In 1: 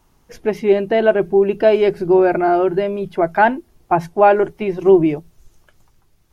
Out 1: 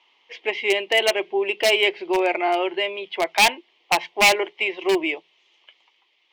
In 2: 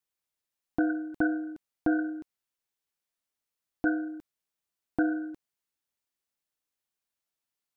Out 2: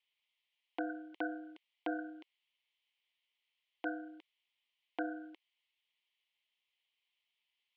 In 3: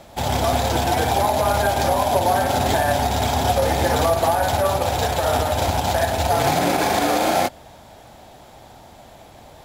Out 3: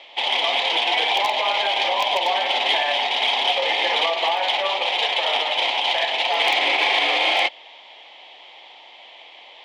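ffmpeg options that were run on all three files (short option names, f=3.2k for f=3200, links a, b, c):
-af "highpass=f=410:w=0.5412,highpass=f=410:w=1.3066,equalizer=f=420:t=q:w=4:g=-3,equalizer=f=630:t=q:w=4:g=-4,equalizer=f=990:t=q:w=4:g=5,equalizer=f=1.5k:t=q:w=4:g=-9,equalizer=f=2.1k:t=q:w=4:g=6,equalizer=f=3.1k:t=q:w=4:g=9,lowpass=f=3.3k:w=0.5412,lowpass=f=3.3k:w=1.3066,aeval=exprs='0.316*(abs(mod(val(0)/0.316+3,4)-2)-1)':c=same,aexciter=amount=3.4:drive=6.5:freq=2k,volume=-3dB"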